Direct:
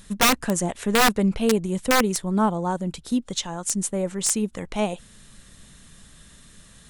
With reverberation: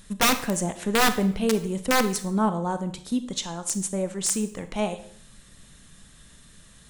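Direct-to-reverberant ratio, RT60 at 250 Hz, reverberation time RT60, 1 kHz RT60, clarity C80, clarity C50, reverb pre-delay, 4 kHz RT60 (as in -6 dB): 10.0 dB, 0.65 s, 0.55 s, 0.55 s, 16.5 dB, 12.5 dB, 25 ms, 0.55 s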